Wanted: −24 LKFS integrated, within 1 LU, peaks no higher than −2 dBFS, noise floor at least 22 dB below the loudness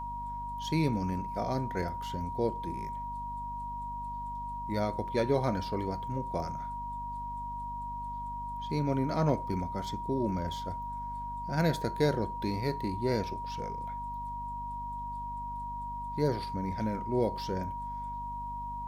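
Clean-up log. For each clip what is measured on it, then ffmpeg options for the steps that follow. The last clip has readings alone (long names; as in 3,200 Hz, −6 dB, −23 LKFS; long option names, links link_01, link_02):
mains hum 50 Hz; hum harmonics up to 250 Hz; level of the hum −41 dBFS; interfering tone 950 Hz; level of the tone −36 dBFS; integrated loudness −34.0 LKFS; sample peak −13.5 dBFS; target loudness −24.0 LKFS
→ -af "bandreject=frequency=50:width_type=h:width=6,bandreject=frequency=100:width_type=h:width=6,bandreject=frequency=150:width_type=h:width=6,bandreject=frequency=200:width_type=h:width=6,bandreject=frequency=250:width_type=h:width=6"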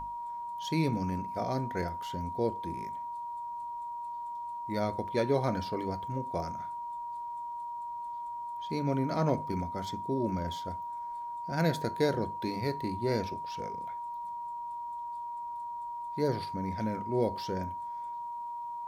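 mains hum none found; interfering tone 950 Hz; level of the tone −36 dBFS
→ -af "bandreject=frequency=950:width=30"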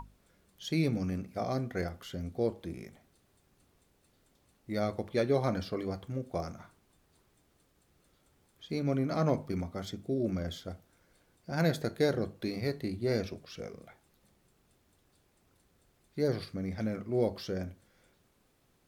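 interfering tone none found; integrated loudness −34.0 LKFS; sample peak −15.0 dBFS; target loudness −24.0 LKFS
→ -af "volume=10dB"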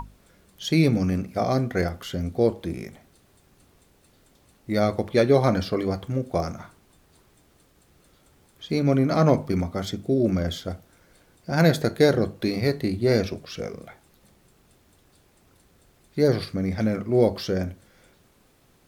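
integrated loudness −24.0 LKFS; sample peak −5.0 dBFS; background noise floor −60 dBFS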